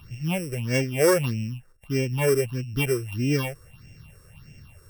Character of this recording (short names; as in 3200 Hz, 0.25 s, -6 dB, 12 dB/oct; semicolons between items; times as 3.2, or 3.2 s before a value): a buzz of ramps at a fixed pitch in blocks of 16 samples; phasing stages 6, 1.6 Hz, lowest notch 200–1100 Hz